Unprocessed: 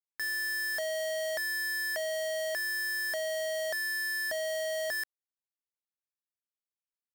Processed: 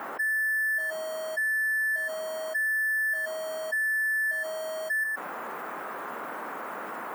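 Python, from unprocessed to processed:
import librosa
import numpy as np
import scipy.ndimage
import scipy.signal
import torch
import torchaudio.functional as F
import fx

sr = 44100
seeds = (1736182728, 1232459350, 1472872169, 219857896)

y = fx.spec_expand(x, sr, power=2.3)
y = y + 0.87 * np.pad(y, (int(2.4 * sr / 1000.0), 0))[:len(y)]
y = fx.dmg_noise_band(y, sr, seeds[0], low_hz=170.0, high_hz=1400.0, level_db=-60.0)
y = fx.riaa(y, sr, side='recording')
y = y + 10.0 ** (-11.0 / 20.0) * np.pad(y, (int(117 * sr / 1000.0), 0))[:len(y)]
y = fx.env_flatten(y, sr, amount_pct=70)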